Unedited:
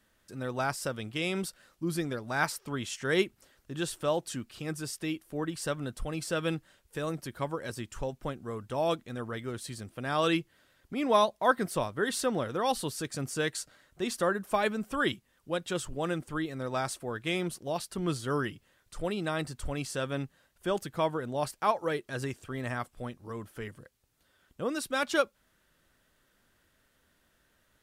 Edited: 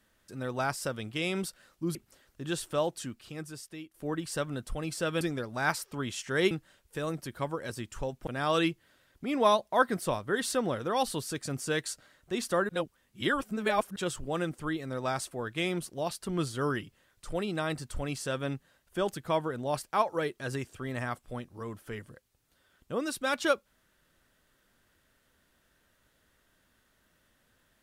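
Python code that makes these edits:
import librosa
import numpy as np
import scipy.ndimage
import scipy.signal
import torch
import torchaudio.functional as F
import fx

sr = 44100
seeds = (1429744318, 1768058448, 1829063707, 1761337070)

y = fx.edit(x, sr, fx.move(start_s=1.95, length_s=1.3, to_s=6.51),
    fx.fade_out_to(start_s=4.07, length_s=1.17, floor_db=-13.5),
    fx.cut(start_s=8.27, length_s=1.69),
    fx.reverse_span(start_s=14.38, length_s=1.27), tone=tone)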